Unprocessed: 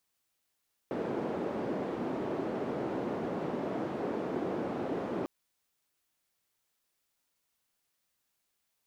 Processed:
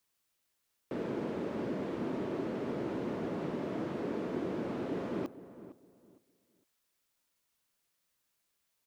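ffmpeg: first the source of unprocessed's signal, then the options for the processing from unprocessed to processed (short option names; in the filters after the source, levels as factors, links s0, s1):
-f lavfi -i "anoisesrc=c=white:d=4.35:r=44100:seed=1,highpass=f=270,lowpass=f=360,volume=-7.9dB"
-filter_complex "[0:a]bandreject=f=770:w=12,acrossover=split=440|1700[s0][s1][s2];[s1]alimiter=level_in=5.31:limit=0.0631:level=0:latency=1,volume=0.188[s3];[s0][s3][s2]amix=inputs=3:normalize=0,asplit=2[s4][s5];[s5]adelay=459,lowpass=f=1200:p=1,volume=0.2,asplit=2[s6][s7];[s7]adelay=459,lowpass=f=1200:p=1,volume=0.26,asplit=2[s8][s9];[s9]adelay=459,lowpass=f=1200:p=1,volume=0.26[s10];[s4][s6][s8][s10]amix=inputs=4:normalize=0"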